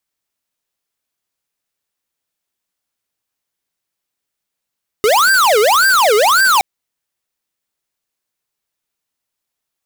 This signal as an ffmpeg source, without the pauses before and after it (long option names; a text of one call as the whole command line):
ffmpeg -f lavfi -i "aevalsrc='0.282*(2*lt(mod((996*t-584/(2*PI*1.8)*sin(2*PI*1.8*t)),1),0.5)-1)':duration=1.57:sample_rate=44100" out.wav